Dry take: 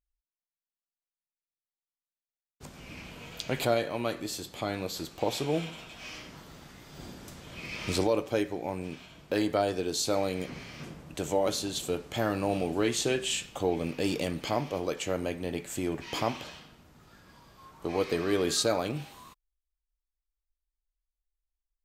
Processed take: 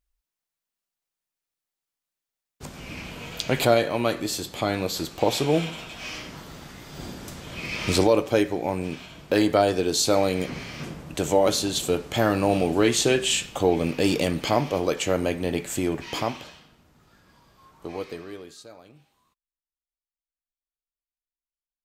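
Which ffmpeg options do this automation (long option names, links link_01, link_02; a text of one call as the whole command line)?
ffmpeg -i in.wav -af "volume=7.5dB,afade=type=out:start_time=15.66:duration=0.91:silence=0.334965,afade=type=out:start_time=17.85:duration=0.41:silence=0.398107,afade=type=out:start_time=18.26:duration=0.28:silence=0.354813" out.wav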